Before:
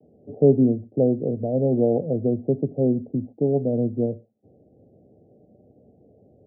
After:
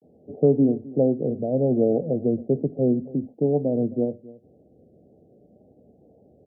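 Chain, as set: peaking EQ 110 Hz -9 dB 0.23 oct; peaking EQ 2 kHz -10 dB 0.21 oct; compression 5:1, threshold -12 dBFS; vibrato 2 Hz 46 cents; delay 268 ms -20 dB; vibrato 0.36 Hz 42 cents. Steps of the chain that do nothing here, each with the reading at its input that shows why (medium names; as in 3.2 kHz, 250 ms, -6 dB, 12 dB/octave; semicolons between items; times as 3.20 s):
peaking EQ 2 kHz: input has nothing above 760 Hz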